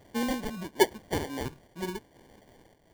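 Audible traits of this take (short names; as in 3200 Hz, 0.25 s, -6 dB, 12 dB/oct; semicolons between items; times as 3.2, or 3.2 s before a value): a quantiser's noise floor 10-bit, dither triangular; phasing stages 12, 1 Hz, lowest notch 430–1000 Hz; aliases and images of a low sample rate 1300 Hz, jitter 0%; noise-modulated level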